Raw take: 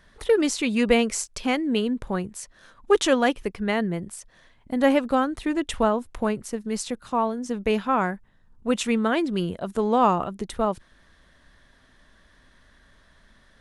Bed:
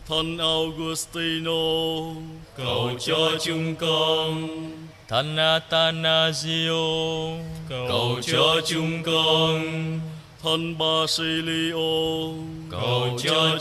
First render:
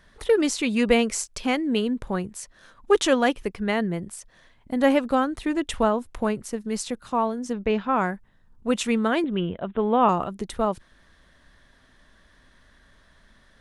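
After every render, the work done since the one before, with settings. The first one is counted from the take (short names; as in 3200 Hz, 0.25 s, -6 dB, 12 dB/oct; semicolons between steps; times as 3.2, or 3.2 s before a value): 7.53–7.96 air absorption 160 m; 9.24–10.09 steep low-pass 3600 Hz 96 dB/oct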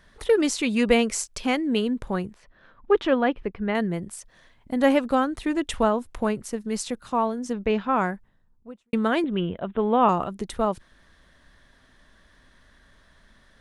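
2.34–3.75 air absorption 370 m; 7.99–8.93 studio fade out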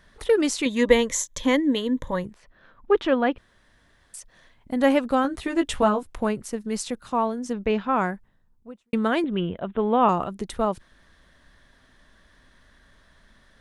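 0.65–2.25 ripple EQ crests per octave 1.1, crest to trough 13 dB; 3.38–4.14 room tone; 5.23–6.03 doubler 15 ms -4 dB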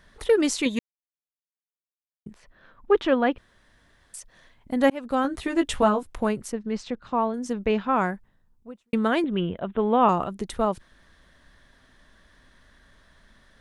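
0.79–2.26 mute; 4.9–5.4 fade in equal-power; 6.52–7.34 air absorption 180 m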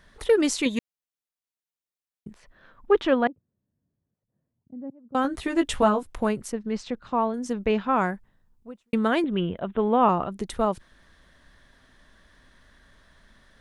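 3.27–5.15 ladder band-pass 160 Hz, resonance 30%; 9.88–10.32 air absorption 140 m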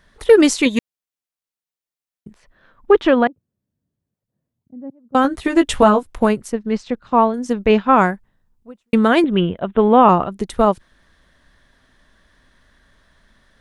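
maximiser +12.5 dB; upward expander 1.5:1, over -29 dBFS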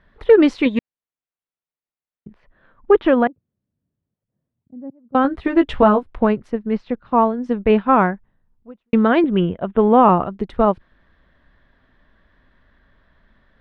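air absorption 360 m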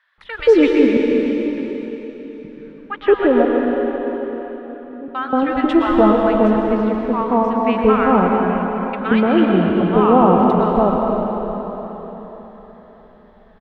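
bands offset in time highs, lows 0.18 s, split 990 Hz; plate-style reverb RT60 4.3 s, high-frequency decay 0.85×, pre-delay 0.1 s, DRR -0.5 dB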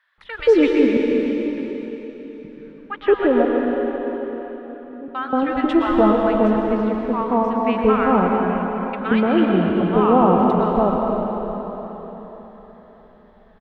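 gain -2.5 dB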